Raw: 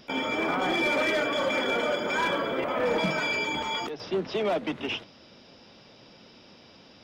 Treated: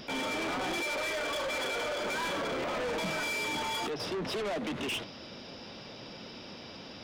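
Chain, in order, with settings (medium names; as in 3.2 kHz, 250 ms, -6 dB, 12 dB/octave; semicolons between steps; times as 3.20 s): 0.80–2.05 s: high-pass 380 Hz 12 dB/octave; peak limiter -24.5 dBFS, peak gain reduction 8.5 dB; saturation -38.5 dBFS, distortion -7 dB; trim +7 dB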